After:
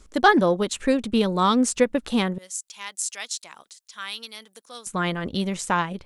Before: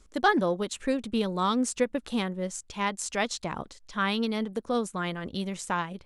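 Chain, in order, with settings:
0:02.38–0:04.87: first difference
level +6.5 dB

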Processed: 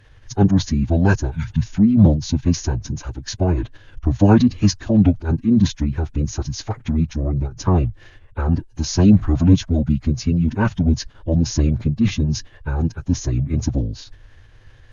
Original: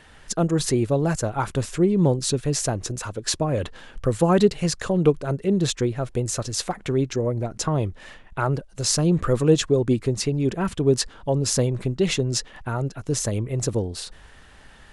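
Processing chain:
low shelf with overshoot 230 Hz +8 dB, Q 3
healed spectral selection 0:01.34–0:01.67, 420–1,500 Hz after
phase-vocoder pitch shift with formants kept −9 semitones
level −3 dB

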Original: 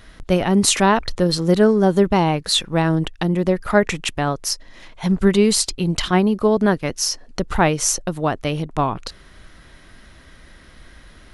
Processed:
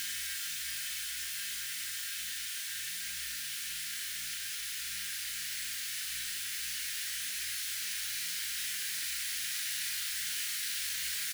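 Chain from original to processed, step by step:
spectral envelope flattened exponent 0.1
elliptic high-pass filter 1,600 Hz, stop band 70 dB
downward compressor 3 to 1, threshold −39 dBFS, peak gain reduction 19.5 dB
mains hum 60 Hz, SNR 25 dB
double-tracking delay 40 ms −7 dB
surface crackle 55 per second −46 dBFS
single-tap delay 988 ms −9 dB
extreme stretch with random phases 49×, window 0.50 s, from 0:03.05

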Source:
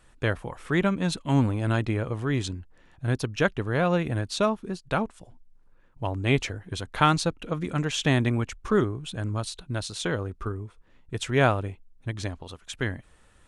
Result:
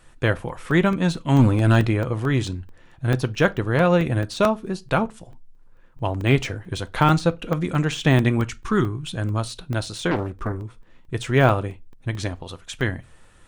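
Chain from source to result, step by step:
de-essing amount 80%
0:01.39–0:01.87: leveller curve on the samples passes 1
0:08.48–0:09.09: parametric band 560 Hz −13.5 dB 0.73 octaves
convolution reverb RT60 0.25 s, pre-delay 6 ms, DRR 11 dB
regular buffer underruns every 0.22 s, samples 64, zero, from 0:00.49
0:10.11–0:10.64: highs frequency-modulated by the lows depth 0.84 ms
level +5 dB

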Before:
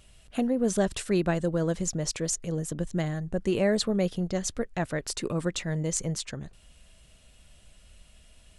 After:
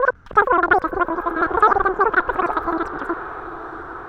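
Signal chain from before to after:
slices reordered back to front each 110 ms, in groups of 5
low-pass with resonance 740 Hz, resonance Q 4.9
change of speed 2.1×
on a send: feedback delay with all-pass diffusion 929 ms, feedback 59%, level −13 dB
on the sum: level +6 dB

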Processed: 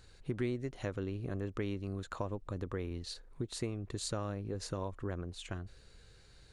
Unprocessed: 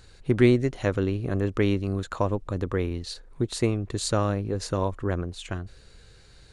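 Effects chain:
downward compressor 2.5 to 1, threshold −29 dBFS, peak gain reduction 10.5 dB
level −7 dB

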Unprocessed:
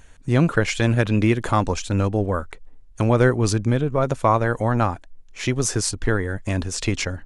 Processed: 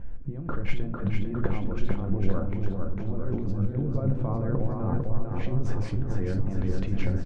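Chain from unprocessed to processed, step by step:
low-pass filter 2,100 Hz 12 dB per octave
tilt shelving filter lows +9.5 dB, about 650 Hz
compressor whose output falls as the input rises −22 dBFS, ratio −1
bouncing-ball delay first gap 450 ms, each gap 0.9×, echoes 5
rectangular room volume 330 cubic metres, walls furnished, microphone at 0.83 metres
level −8 dB

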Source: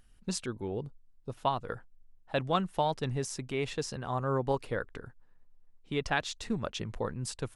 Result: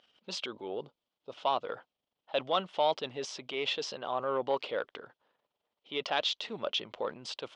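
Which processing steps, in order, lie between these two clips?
transient designer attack −4 dB, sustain +5 dB
harmonic generator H 5 −22 dB, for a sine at −15.5 dBFS
loudspeaker in its box 450–4,900 Hz, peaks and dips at 590 Hz +5 dB, 1,700 Hz −7 dB, 3,200 Hz +9 dB

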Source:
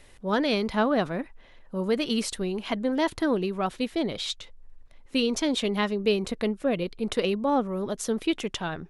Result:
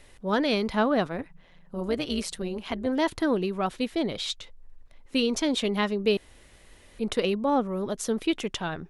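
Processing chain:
0:01.05–0:02.87: amplitude modulation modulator 170 Hz, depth 45%
0:06.17–0:06.99: fill with room tone

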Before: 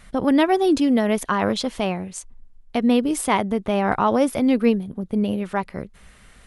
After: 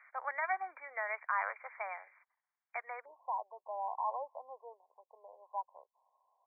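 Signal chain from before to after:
Bessel high-pass filter 1,300 Hz, order 8
brickwall limiter −19 dBFS, peak gain reduction 7.5 dB
linear-phase brick-wall low-pass 2,400 Hz, from 0:03.04 1,100 Hz
level −3 dB

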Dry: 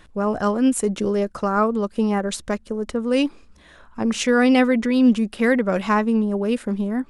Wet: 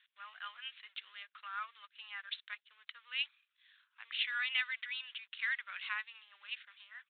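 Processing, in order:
mu-law and A-law mismatch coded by A
high-pass filter 1,500 Hz 24 dB per octave
first difference
downsampling to 8,000 Hz
level +4 dB
MP3 48 kbit/s 12,000 Hz

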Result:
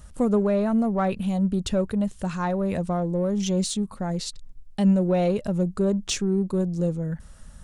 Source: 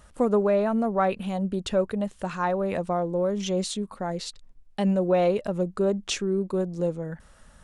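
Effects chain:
bass and treble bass +11 dB, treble +7 dB
in parallel at −11.5 dB: soft clipping −25.5 dBFS, distortion −7 dB
on the sum: level −3.5 dB

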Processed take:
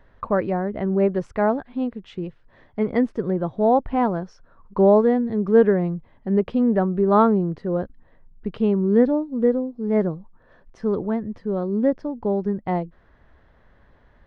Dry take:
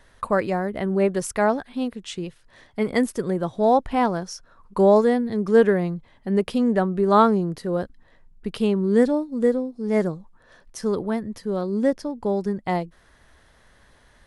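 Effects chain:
head-to-tape spacing loss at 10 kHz 40 dB
level +2.5 dB

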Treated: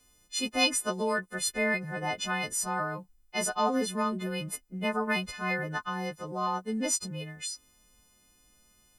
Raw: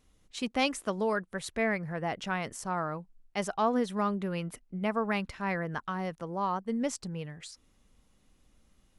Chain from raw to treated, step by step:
every partial snapped to a pitch grid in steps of 3 semitones

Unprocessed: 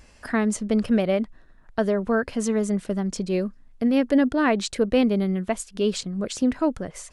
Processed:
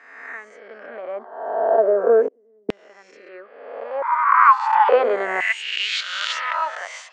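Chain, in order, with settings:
peak hold with a rise ahead of every peak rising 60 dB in 1.40 s
low-pass filter 7,100 Hz 24 dB per octave
flat-topped bell 900 Hz +9.5 dB 2.5 octaves
hum removal 128.1 Hz, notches 11
in parallel at −3 dB: downward compressor, threshold −20 dBFS, peak gain reduction 13 dB
0:02.27–0:02.69: on the sum: gate with flip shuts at −15 dBFS, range −41 dB
band-pass filter sweep 300 Hz → 3,000 Hz, 0:03.20–0:06.06
speech leveller within 5 dB 0.5 s
auto-filter high-pass saw down 0.37 Hz 300–2,800 Hz
0:04.02–0:04.89: frequency shifter +390 Hz

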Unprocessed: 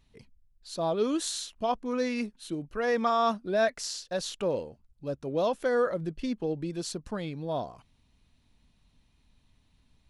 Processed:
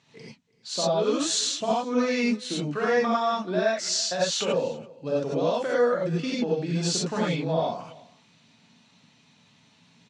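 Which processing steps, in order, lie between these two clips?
elliptic band-pass filter 130–7,200 Hz, stop band 40 dB
low-shelf EQ 430 Hz −6.5 dB
downward compressor 6 to 1, threshold −37 dBFS, peak gain reduction 14 dB
single-tap delay 333 ms −22.5 dB
reverb whose tail is shaped and stops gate 120 ms rising, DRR −5.5 dB
level +8.5 dB

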